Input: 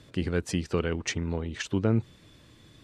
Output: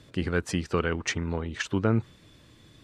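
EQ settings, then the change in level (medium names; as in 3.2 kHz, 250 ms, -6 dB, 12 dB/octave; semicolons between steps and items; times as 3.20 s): dynamic bell 1.3 kHz, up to +7 dB, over -47 dBFS, Q 1.1; 0.0 dB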